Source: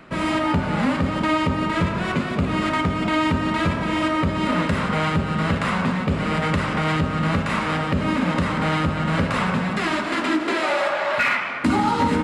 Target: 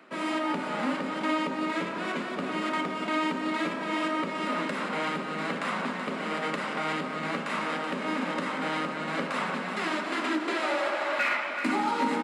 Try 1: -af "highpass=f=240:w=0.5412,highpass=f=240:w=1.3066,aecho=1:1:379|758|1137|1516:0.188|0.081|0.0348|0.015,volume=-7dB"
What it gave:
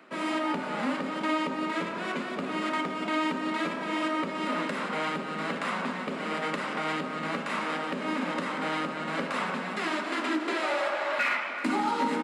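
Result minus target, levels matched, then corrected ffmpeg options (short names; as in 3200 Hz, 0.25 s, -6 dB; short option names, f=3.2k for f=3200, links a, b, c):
echo-to-direct -6 dB
-af "highpass=f=240:w=0.5412,highpass=f=240:w=1.3066,aecho=1:1:379|758|1137|1516|1895:0.376|0.162|0.0695|0.0299|0.0128,volume=-7dB"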